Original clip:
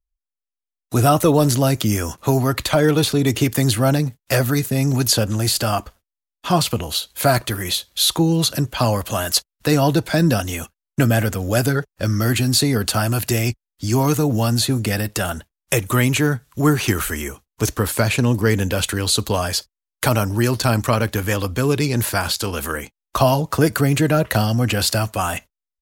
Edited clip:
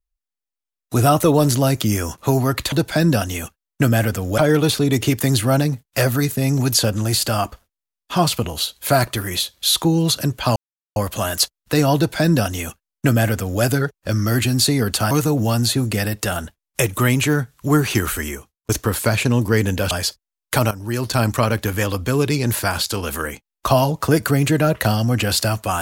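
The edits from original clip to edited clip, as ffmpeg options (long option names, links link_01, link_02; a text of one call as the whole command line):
ffmpeg -i in.wav -filter_complex "[0:a]asplit=8[link_01][link_02][link_03][link_04][link_05][link_06][link_07][link_08];[link_01]atrim=end=2.722[link_09];[link_02]atrim=start=9.898:end=11.562[link_10];[link_03]atrim=start=2.718:end=8.9,asetpts=PTS-STARTPTS,afade=type=out:start_time=6.178:duration=0.004:curve=hsin,apad=pad_dur=0.4[link_11];[link_04]atrim=start=8.9:end=13.052,asetpts=PTS-STARTPTS,afade=type=in:duration=0.004:curve=hsin[link_12];[link_05]atrim=start=14.038:end=17.62,asetpts=PTS-STARTPTS,afade=type=out:start_time=3.162:duration=0.42[link_13];[link_06]atrim=start=17.62:end=18.842,asetpts=PTS-STARTPTS,afade=type=in:duration=0.004:curve=hsin[link_14];[link_07]atrim=start=19.408:end=20.21,asetpts=PTS-STARTPTS,afade=type=out:start_time=0.798:duration=0.004:curve=hsin:silence=0.188365[link_15];[link_08]atrim=start=20.21,asetpts=PTS-STARTPTS,afade=type=in:duration=0.51:silence=0.188365[link_16];[link_09][link_10]acrossfade=duration=0.004:curve1=hsin:curve2=hsin[link_17];[link_11][link_12]concat=n=2:v=0:a=1[link_18];[link_17][link_18]acrossfade=duration=0.004:curve1=hsin:curve2=hsin[link_19];[link_13][link_14]concat=n=2:v=0:a=1[link_20];[link_19][link_20]acrossfade=duration=0.004:curve1=hsin:curve2=hsin[link_21];[link_15][link_16]concat=n=2:v=0:a=1[link_22];[link_21][link_22]acrossfade=duration=0.004:curve1=hsin:curve2=hsin" out.wav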